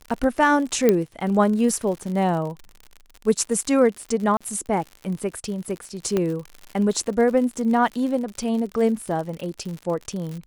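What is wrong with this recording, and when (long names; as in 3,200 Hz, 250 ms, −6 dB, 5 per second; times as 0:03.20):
surface crackle 79 per second −30 dBFS
0:00.89: click −5 dBFS
0:04.37–0:04.41: drop-out 36 ms
0:06.17: click −10 dBFS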